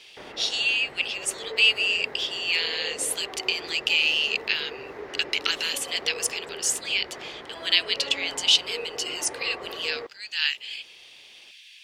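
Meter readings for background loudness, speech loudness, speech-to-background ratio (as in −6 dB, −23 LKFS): −39.0 LKFS, −24.5 LKFS, 14.5 dB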